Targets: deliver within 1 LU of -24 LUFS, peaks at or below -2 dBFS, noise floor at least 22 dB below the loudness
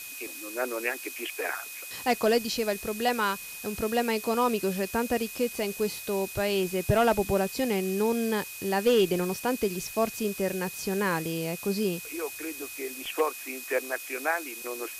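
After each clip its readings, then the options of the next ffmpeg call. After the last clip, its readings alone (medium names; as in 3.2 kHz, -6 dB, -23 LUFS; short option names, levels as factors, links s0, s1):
steady tone 2.5 kHz; tone level -43 dBFS; noise floor -41 dBFS; noise floor target -51 dBFS; loudness -28.5 LUFS; peak level -13.0 dBFS; loudness target -24.0 LUFS
-> -af "bandreject=f=2500:w=30"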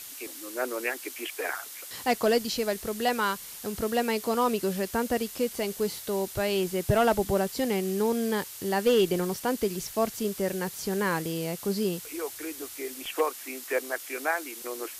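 steady tone not found; noise floor -43 dBFS; noise floor target -51 dBFS
-> -af "afftdn=nr=8:nf=-43"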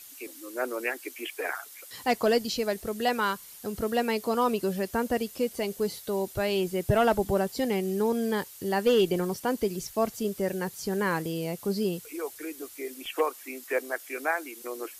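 noise floor -48 dBFS; noise floor target -51 dBFS
-> -af "afftdn=nr=6:nf=-48"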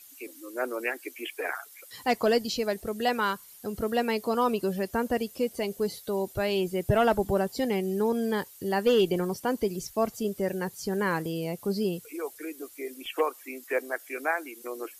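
noise floor -51 dBFS; loudness -29.0 LUFS; peak level -14.0 dBFS; loudness target -24.0 LUFS
-> -af "volume=1.78"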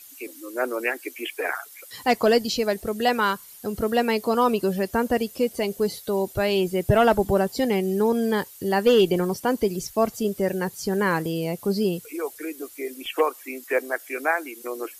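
loudness -24.0 LUFS; peak level -9.0 dBFS; noise floor -46 dBFS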